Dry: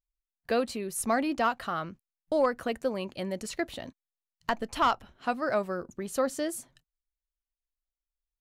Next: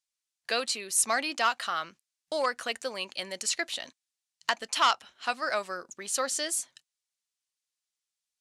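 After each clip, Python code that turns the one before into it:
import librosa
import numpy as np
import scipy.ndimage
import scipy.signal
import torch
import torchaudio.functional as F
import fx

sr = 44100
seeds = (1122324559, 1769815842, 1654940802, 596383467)

y = fx.weighting(x, sr, curve='ITU-R 468')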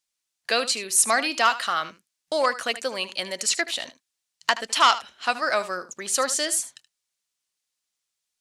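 y = x + 10.0 ** (-15.0 / 20.0) * np.pad(x, (int(76 * sr / 1000.0), 0))[:len(x)]
y = F.gain(torch.from_numpy(y), 6.0).numpy()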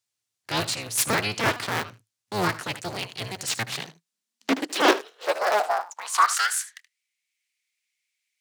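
y = fx.cycle_switch(x, sr, every=3, mode='inverted')
y = fx.transient(y, sr, attack_db=-7, sustain_db=-2)
y = fx.filter_sweep_highpass(y, sr, from_hz=110.0, to_hz=2200.0, start_s=3.52, end_s=6.98, q=7.4)
y = F.gain(torch.from_numpy(y), -1.5).numpy()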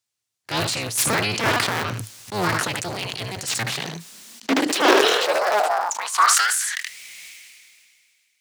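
y = fx.sustainer(x, sr, db_per_s=26.0)
y = F.gain(torch.from_numpy(y), 1.5).numpy()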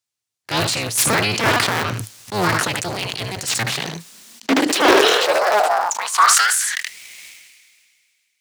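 y = fx.leveller(x, sr, passes=1)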